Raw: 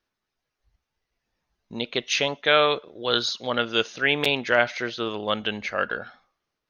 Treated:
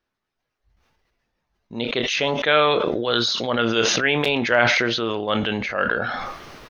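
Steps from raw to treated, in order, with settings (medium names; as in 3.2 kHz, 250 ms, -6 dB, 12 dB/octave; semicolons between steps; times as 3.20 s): treble shelf 4.5 kHz -9 dB; doubling 26 ms -13 dB; decay stretcher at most 23 dB/s; trim +2 dB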